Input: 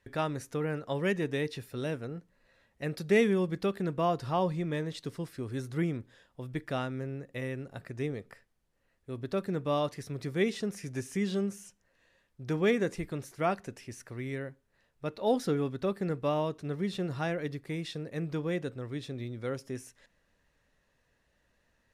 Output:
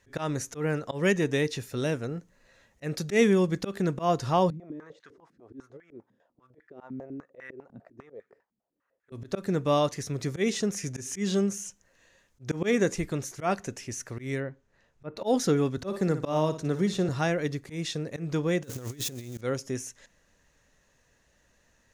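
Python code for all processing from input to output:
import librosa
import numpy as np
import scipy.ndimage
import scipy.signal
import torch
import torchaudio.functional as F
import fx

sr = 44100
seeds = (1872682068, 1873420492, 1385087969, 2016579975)

y = fx.chain(x, sr, fx.over_compress(threshold_db=-34.0, ratio=-0.5),
    fx.filter_held_bandpass(hz=10.0, low_hz=220.0, high_hz=1600.0), at=(4.5, 9.12))
y = fx.chain(y, sr, fx.lowpass(hz=2800.0, slope=6),
    fx.env_lowpass_down(base_hz=1600.0, full_db=-32.5), at=(14.4, 15.17))
y = fx.chain(y, sr, fx.peak_eq(hz=2400.0, db=-3.5, octaves=0.97),
    fx.room_flutter(wall_m=10.0, rt60_s=0.3),
    fx.band_squash(depth_pct=40), at=(15.77, 17.09))
y = fx.chain(y, sr, fx.crossing_spikes(level_db=-36.5),
    fx.over_compress(threshold_db=-42.0, ratio=-0.5), at=(18.63, 19.41))
y = fx.peak_eq(y, sr, hz=6500.0, db=11.0, octaves=0.43)
y = fx.auto_swell(y, sr, attack_ms=120.0)
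y = F.gain(torch.from_numpy(y), 5.5).numpy()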